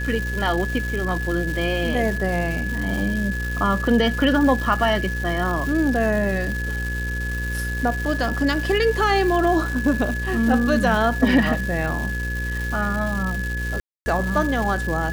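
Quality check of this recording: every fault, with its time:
buzz 60 Hz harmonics 9 -27 dBFS
crackle 500/s -27 dBFS
tone 1700 Hz -28 dBFS
13.8–14.06 gap 0.26 s

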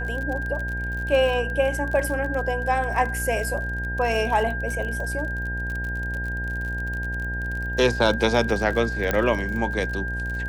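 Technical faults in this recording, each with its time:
buzz 60 Hz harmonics 16 -30 dBFS
crackle 40/s -29 dBFS
tone 1600 Hz -29 dBFS
9.11 pop -9 dBFS

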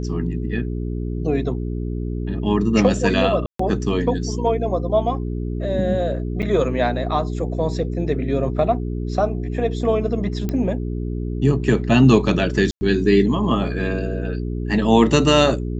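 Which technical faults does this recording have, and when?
hum 60 Hz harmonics 7 -25 dBFS
3.46–3.59 gap 0.134 s
6.42–6.43 gap 7.5 ms
10.49 pop -12 dBFS
12.71–12.81 gap 0.1 s

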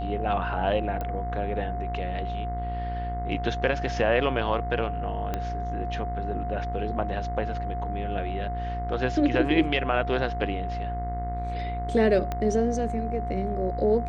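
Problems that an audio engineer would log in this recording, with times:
buzz 60 Hz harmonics 36 -32 dBFS
tone 710 Hz -32 dBFS
1.01 pop -19 dBFS
5.34 pop -15 dBFS
12.32 pop -16 dBFS

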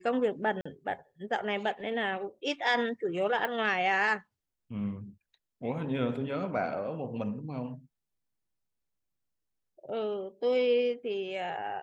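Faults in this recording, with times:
0.61–0.66 gap 45 ms
3.45 pop -19 dBFS

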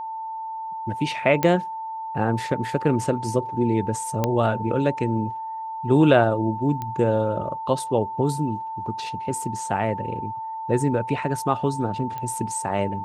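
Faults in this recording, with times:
tone 890 Hz -29 dBFS
1.43 pop -9 dBFS
4.24 pop -8 dBFS
6.82 pop -17 dBFS
12.18 pop -19 dBFS

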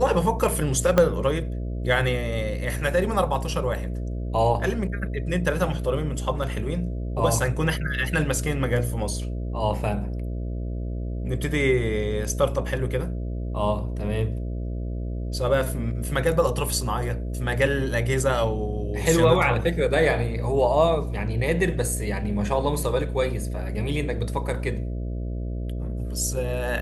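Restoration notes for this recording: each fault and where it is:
buzz 60 Hz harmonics 11 -29 dBFS
0.98 pop -6 dBFS

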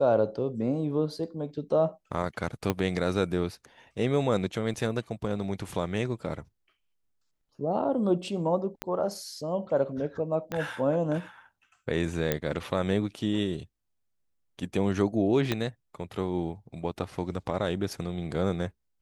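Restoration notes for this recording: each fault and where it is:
2.7 pop -12 dBFS
4.74 gap 3.6 ms
8.82 pop -16 dBFS
10.52 pop -18 dBFS
12.32 pop -11 dBFS
15.52 pop -12 dBFS

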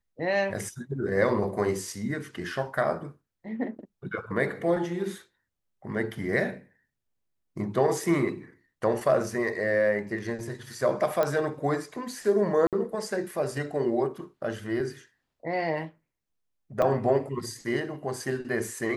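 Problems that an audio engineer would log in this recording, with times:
11.23 pop -14 dBFS
12.67–12.73 gap 57 ms
16.82 gap 4.7 ms

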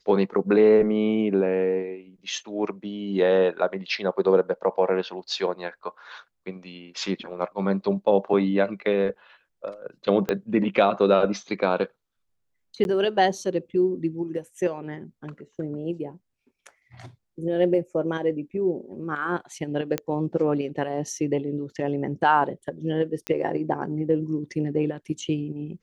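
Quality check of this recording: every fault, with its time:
10.29 pop -12 dBFS
12.84–12.85 gap 11 ms
19.98 pop -11 dBFS
23.27 pop -13 dBFS

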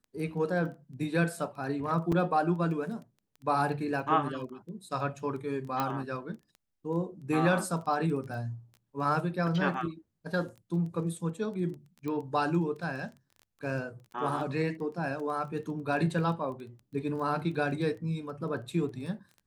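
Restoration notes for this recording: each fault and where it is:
crackle 12/s -39 dBFS
2.12 gap 4.6 ms
5.8 pop -16 dBFS
12.08 pop -24 dBFS

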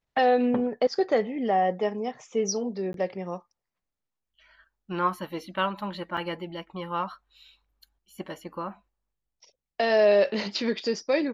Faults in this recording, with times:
2.93–2.94 gap 12 ms
6.17 gap 4.5 ms

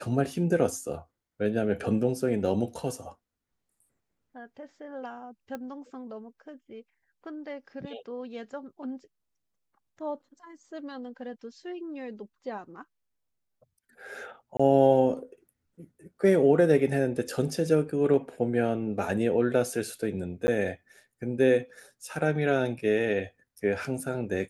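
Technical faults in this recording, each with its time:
5.55 pop -23 dBFS
14.57–14.6 gap 25 ms
20.47–20.48 gap 10 ms

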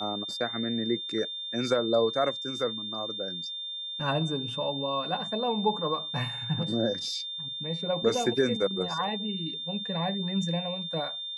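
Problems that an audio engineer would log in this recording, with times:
tone 3600 Hz -34 dBFS

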